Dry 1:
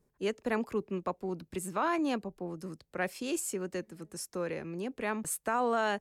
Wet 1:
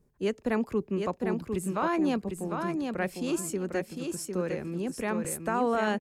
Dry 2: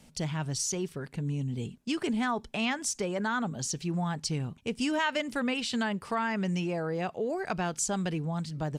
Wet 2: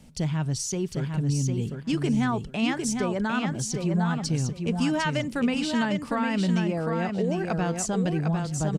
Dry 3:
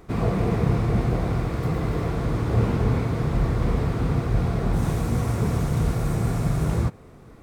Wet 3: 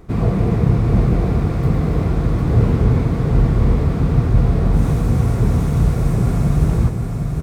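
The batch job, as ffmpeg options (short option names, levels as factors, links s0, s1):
-filter_complex "[0:a]lowshelf=f=330:g=8,asplit=2[s0][s1];[s1]aecho=0:1:753|1506|2259:0.562|0.107|0.0203[s2];[s0][s2]amix=inputs=2:normalize=0"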